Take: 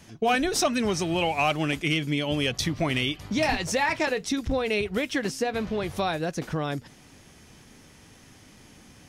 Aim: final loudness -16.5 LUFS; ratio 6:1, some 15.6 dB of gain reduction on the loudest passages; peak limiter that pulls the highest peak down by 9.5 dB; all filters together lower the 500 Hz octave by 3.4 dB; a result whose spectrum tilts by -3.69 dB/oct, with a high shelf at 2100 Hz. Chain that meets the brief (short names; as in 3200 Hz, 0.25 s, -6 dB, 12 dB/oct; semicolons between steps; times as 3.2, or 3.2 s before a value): bell 500 Hz -4.5 dB; high shelf 2100 Hz +3.5 dB; compressor 6:1, threshold -37 dBFS; gain +27 dB; limiter -6 dBFS